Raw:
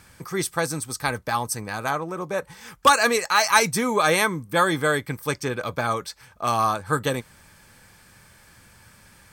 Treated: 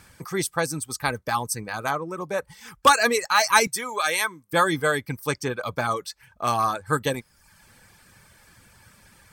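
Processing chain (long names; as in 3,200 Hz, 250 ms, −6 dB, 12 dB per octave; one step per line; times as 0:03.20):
reverb reduction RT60 0.69 s
0:03.67–0:04.53: high-pass filter 1,300 Hz 6 dB per octave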